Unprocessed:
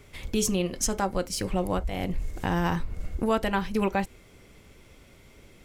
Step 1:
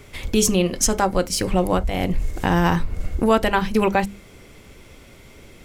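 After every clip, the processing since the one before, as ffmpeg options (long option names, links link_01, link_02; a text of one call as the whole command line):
ffmpeg -i in.wav -af "bandreject=frequency=50:width_type=h:width=6,bandreject=frequency=100:width_type=h:width=6,bandreject=frequency=150:width_type=h:width=6,bandreject=frequency=200:width_type=h:width=6,volume=8dB" out.wav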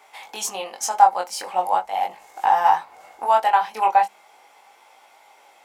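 ffmpeg -i in.wav -af "highpass=frequency=820:width_type=q:width=9.9,flanger=delay=19:depth=3.5:speed=0.39,volume=-3.5dB" out.wav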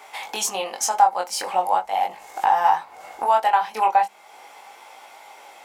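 ffmpeg -i in.wav -af "acompressor=threshold=-37dB:ratio=1.5,volume=7.5dB" out.wav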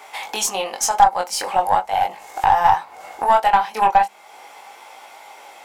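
ffmpeg -i in.wav -af "aeval=exprs='0.631*(cos(1*acos(clip(val(0)/0.631,-1,1)))-cos(1*PI/2))+0.0501*(cos(6*acos(clip(val(0)/0.631,-1,1)))-cos(6*PI/2))+0.0224*(cos(8*acos(clip(val(0)/0.631,-1,1)))-cos(8*PI/2))':channel_layout=same,volume=3dB" out.wav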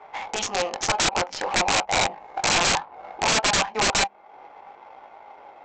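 ffmpeg -i in.wav -af "adynamicsmooth=sensitivity=2:basefreq=930,aresample=16000,aeval=exprs='(mod(5.96*val(0)+1,2)-1)/5.96':channel_layout=same,aresample=44100" out.wav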